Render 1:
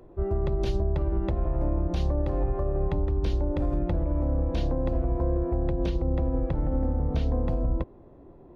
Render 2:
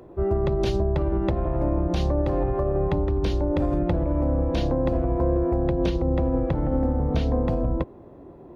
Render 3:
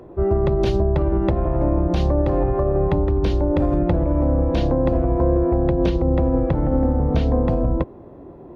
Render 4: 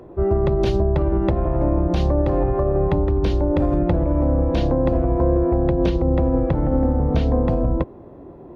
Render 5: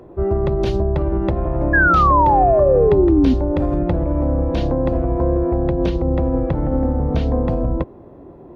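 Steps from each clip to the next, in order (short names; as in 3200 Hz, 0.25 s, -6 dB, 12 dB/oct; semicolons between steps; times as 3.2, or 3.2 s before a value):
HPF 95 Hz 6 dB/oct; gain +6.5 dB
high shelf 3600 Hz -7 dB; gain +4.5 dB
nothing audible
painted sound fall, 1.73–3.34, 250–1700 Hz -14 dBFS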